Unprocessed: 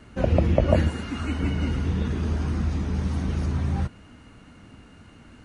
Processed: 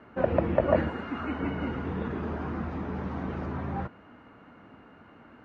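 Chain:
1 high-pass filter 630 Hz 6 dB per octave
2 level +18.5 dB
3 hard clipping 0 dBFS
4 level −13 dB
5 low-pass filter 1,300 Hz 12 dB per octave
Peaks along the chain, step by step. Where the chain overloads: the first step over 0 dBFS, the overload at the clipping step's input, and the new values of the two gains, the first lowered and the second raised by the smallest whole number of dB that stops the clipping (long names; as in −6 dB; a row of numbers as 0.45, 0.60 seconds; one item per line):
−9.0, +9.5, 0.0, −13.0, −12.5 dBFS
step 2, 9.5 dB
step 2 +8.5 dB, step 4 −3 dB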